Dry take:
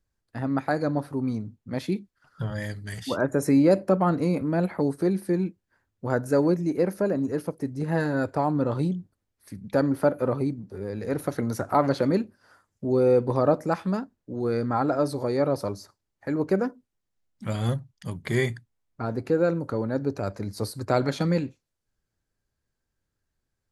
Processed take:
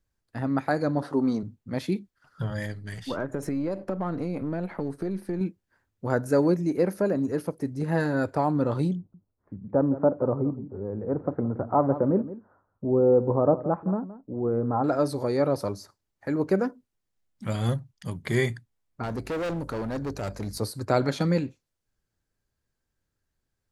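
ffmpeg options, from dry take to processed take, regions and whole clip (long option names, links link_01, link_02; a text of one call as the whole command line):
ffmpeg -i in.wav -filter_complex "[0:a]asettb=1/sr,asplit=3[link_01][link_02][link_03];[link_01]atrim=end=1.024[link_04];[link_02]atrim=start=1.02:end=1.43,asetpts=PTS-STARTPTS,afade=type=in:duration=0.004:curve=qsin,afade=type=out:start_time=0.406:duration=0.004:curve=qsin,equalizer=frequency=2400:width_type=o:width=0.2:gain=-13,acontrast=88,highpass=270,lowpass=6400[link_05];[link_03]atrim=start=1.426[link_06];[link_04][link_05]acrossfade=duration=0.004:curve1=hsin:curve2=qsin[link_07];[link_07][link_06]acrossfade=duration=0.004:curve1=qsin:curve2=hsin,asettb=1/sr,asplit=3[link_08][link_09][link_10];[link_08]atrim=end=2.664[link_11];[link_09]atrim=start=2.66:end=5.41,asetpts=PTS-STARTPTS,afade=type=in:duration=0.004:curve=qsin,afade=type=out:start_time=2.746:duration=0.004:curve=qsin,aeval=exprs='if(lt(val(0),0),0.708*val(0),val(0))':channel_layout=same,highshelf=frequency=5700:gain=-9.5,acompressor=threshold=-25dB:ratio=5:attack=3.2:release=140:knee=1:detection=peak[link_12];[link_10]atrim=start=5.406[link_13];[link_11][link_12]acrossfade=duration=0.004:curve1=hsin:curve2=qsin[link_14];[link_14][link_13]acrossfade=duration=0.004:curve1=qsin:curve2=hsin,asettb=1/sr,asplit=3[link_15][link_16][link_17];[link_15]atrim=end=8.974[link_18];[link_16]atrim=start=8.97:end=14.84,asetpts=PTS-STARTPTS,afade=type=in:duration=0.004:curve=qsin,afade=type=out:start_time=5.866:duration=0.004:curve=qsin,lowpass=frequency=1100:width=0.5412,lowpass=frequency=1100:width=1.3066,aecho=1:1:170:0.178,atrim=end_sample=258867[link_19];[link_17]atrim=start=14.836[link_20];[link_18][link_19]acrossfade=duration=0.004:curve1=hsin:curve2=qsin[link_21];[link_21][link_20]acrossfade=duration=0.004:curve1=qsin:curve2=hsin,asettb=1/sr,asplit=3[link_22][link_23][link_24];[link_22]atrim=end=19.034[link_25];[link_23]atrim=start=19.03:end=20.58,asetpts=PTS-STARTPTS,afade=type=in:duration=0.004:curve=qsin,afade=type=out:start_time=1.546:duration=0.004:curve=qsin,highshelf=frequency=3600:gain=8,aeval=exprs='val(0)+0.00562*(sin(2*PI*50*n/s)+sin(2*PI*2*50*n/s)/2+sin(2*PI*3*50*n/s)/3+sin(2*PI*4*50*n/s)/4+sin(2*PI*5*50*n/s)/5)':channel_layout=same,asoftclip=type=hard:threshold=-27dB[link_26];[link_24]atrim=start=20.576[link_27];[link_25][link_26]acrossfade=duration=0.004:curve1=hsin:curve2=qsin[link_28];[link_28][link_27]acrossfade=duration=0.004:curve1=qsin:curve2=hsin" out.wav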